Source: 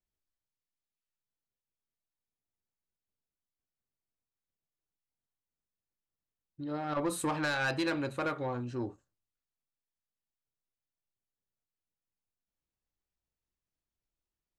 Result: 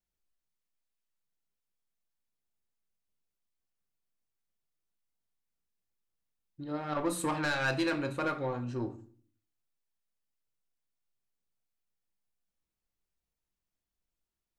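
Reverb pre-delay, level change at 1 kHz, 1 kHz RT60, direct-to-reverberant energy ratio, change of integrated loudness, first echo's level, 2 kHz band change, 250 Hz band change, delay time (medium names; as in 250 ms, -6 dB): 4 ms, +0.5 dB, 0.45 s, 7.0 dB, +1.0 dB, no echo, +0.5 dB, +0.5 dB, no echo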